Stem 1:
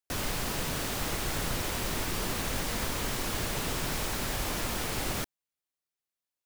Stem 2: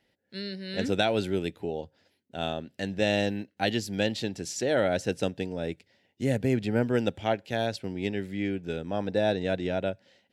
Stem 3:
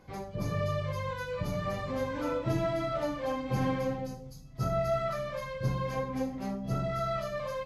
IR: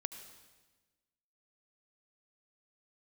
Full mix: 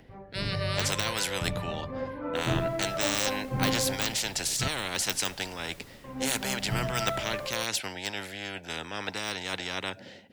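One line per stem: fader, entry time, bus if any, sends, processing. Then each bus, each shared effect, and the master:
−15.5 dB, 2.25 s, no send, no processing
−1.0 dB, 0.00 s, no send, de-essing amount 90%; low-shelf EQ 420 Hz +8.5 dB; every bin compressed towards the loudest bin 10 to 1
−1.0 dB, 0.00 s, muted 0:04.68–0:06.04, no send, low-pass filter 2,700 Hz 12 dB per octave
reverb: not used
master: upward compression, threshold −40 dBFS; multiband upward and downward expander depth 70%

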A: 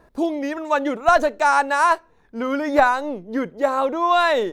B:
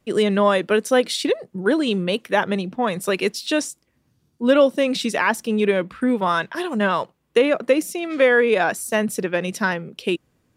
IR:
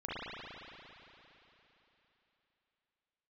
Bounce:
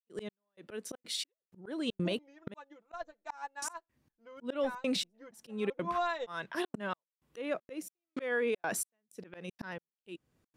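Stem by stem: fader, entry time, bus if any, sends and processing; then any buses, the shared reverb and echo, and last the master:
−5.5 dB, 1.85 s, no send, elliptic low-pass filter 7,500 Hz; comb filter 5.9 ms, depth 70%; expander for the loud parts 2.5 to 1, over −27 dBFS
−2.0 dB, 0.00 s, muted 0:02.54–0:03.62, no send, gate pattern ".xx...xxxx" 158 BPM −60 dB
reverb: not used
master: volume swells 645 ms; brickwall limiter −23.5 dBFS, peak gain reduction 10 dB

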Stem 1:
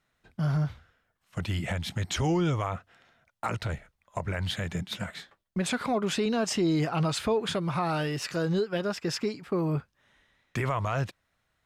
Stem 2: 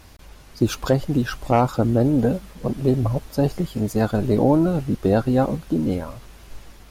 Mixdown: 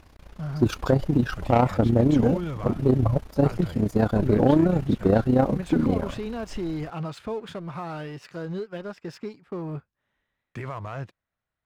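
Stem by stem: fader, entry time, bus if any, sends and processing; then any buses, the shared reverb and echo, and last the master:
−8.5 dB, 0.00 s, no send, no processing
−1.0 dB, 0.00 s, no send, amplitude modulation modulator 30 Hz, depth 50%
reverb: not used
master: high-shelf EQ 3,500 Hz −11 dB; leveller curve on the samples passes 1

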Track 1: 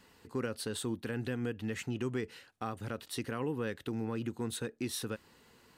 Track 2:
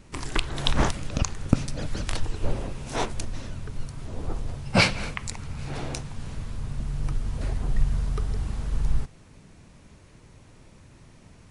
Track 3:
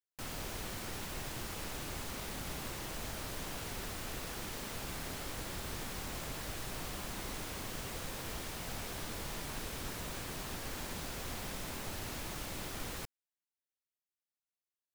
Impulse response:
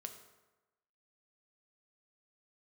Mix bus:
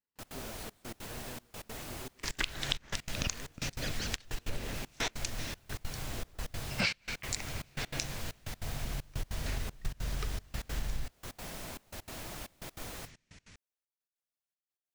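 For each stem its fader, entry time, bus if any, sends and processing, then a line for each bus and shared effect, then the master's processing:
−13.5 dB, 0.00 s, no send, no processing
−6.5 dB, 2.05 s, no send, flat-topped bell 3,400 Hz +11.5 dB 2.6 octaves
−2.5 dB, 0.00 s, no send, parametric band 660 Hz +5 dB 0.38 octaves; noise that follows the level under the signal 10 dB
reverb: not used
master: gate pattern "..x.xxxxx" 195 BPM −24 dB; downward compressor 5 to 1, threshold −30 dBFS, peak gain reduction 17 dB

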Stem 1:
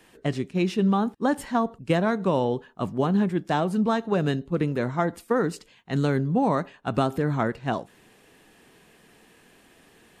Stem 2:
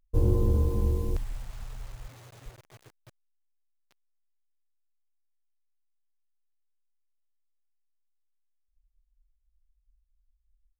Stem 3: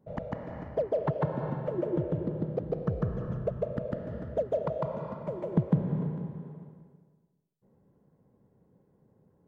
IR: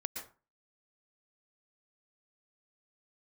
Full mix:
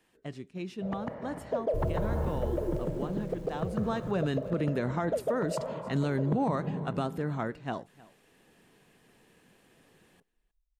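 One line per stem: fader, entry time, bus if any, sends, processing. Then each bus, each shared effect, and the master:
0:03.53 −14 dB → 0:04.26 −1.5 dB → 0:06.50 −1.5 dB → 0:07.00 −8 dB, 0.00 s, no send, echo send −22 dB, no processing
−8.0 dB, 1.60 s, no send, no echo send, no processing
0.0 dB, 0.75 s, no send, no echo send, low-shelf EQ 170 Hz −7.5 dB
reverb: not used
echo: single-tap delay 312 ms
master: brickwall limiter −20.5 dBFS, peak gain reduction 9.5 dB

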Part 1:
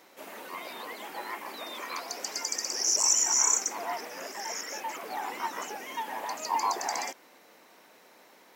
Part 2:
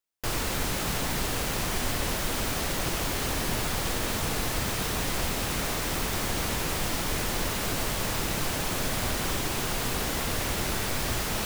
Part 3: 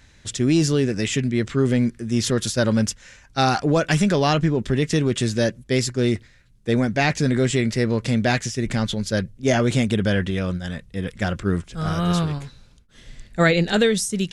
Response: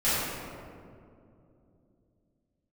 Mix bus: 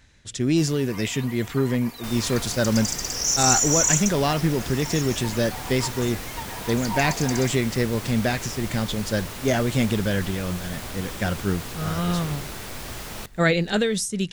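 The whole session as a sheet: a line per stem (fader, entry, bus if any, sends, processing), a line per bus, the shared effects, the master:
−6.5 dB, 0.40 s, no send, no echo send, high-shelf EQ 3,300 Hz +9.5 dB; comb filter 4.2 ms, depth 85%
−6.0 dB, 1.80 s, no send, echo send −22 dB, no processing
−0.5 dB, 0.00 s, no send, no echo send, amplitude modulation by smooth noise, depth 55%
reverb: not used
echo: single-tap delay 727 ms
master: no processing

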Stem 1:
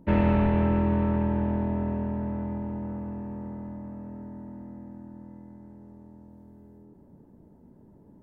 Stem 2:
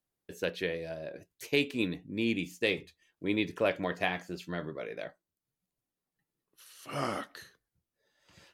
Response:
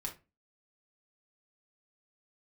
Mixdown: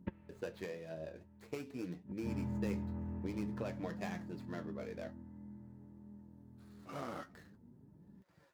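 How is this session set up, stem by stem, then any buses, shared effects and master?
0.0 dB, 0.00 s, no send, drawn EQ curve 160 Hz 0 dB, 660 Hz −11 dB, 1,400 Hz −4 dB; gate with flip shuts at −22 dBFS, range −31 dB
−2.0 dB, 0.00 s, no send, running median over 15 samples; downward compressor 6 to 1, threshold −32 dBFS, peak gain reduction 8.5 dB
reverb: not used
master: high-pass filter 55 Hz; flanger 0.49 Hz, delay 4.8 ms, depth 7.9 ms, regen +49%

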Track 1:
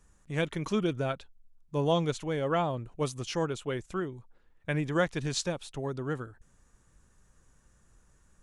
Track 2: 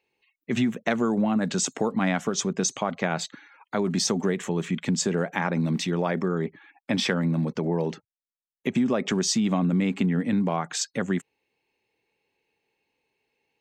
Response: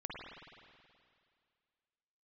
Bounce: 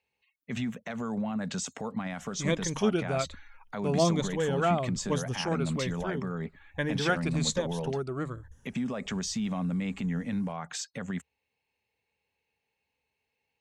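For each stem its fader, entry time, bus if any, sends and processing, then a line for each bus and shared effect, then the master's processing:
−0.5 dB, 2.10 s, no send, rippled gain that drifts along the octave scale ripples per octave 1.1, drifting −1.2 Hz, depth 11 dB; mains-hum notches 50/100/150 Hz
−5.0 dB, 0.00 s, no send, parametric band 340 Hz −13 dB 0.45 octaves; brickwall limiter −20 dBFS, peak gain reduction 11 dB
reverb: not used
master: parametric band 74 Hz +12 dB 0.66 octaves

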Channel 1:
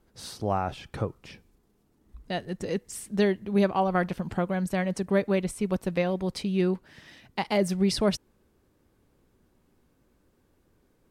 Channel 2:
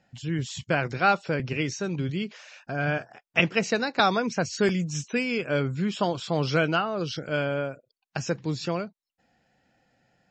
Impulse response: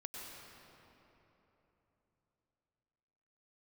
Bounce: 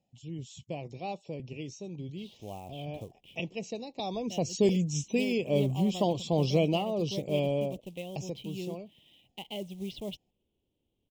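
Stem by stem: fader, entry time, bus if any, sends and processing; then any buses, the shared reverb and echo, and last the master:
−14.0 dB, 2.00 s, no send, low-pass with resonance 3,100 Hz, resonance Q 5.8; floating-point word with a short mantissa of 2 bits
0:04.01 −11 dB → 0:04.51 −0.5 dB → 0:08.06 −0.5 dB → 0:08.33 −11 dB, 0.00 s, no send, notch filter 2,100 Hz, Q 21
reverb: not used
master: Butterworth band-reject 1,500 Hz, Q 0.75; parametric band 4,600 Hz −7 dB 0.32 octaves

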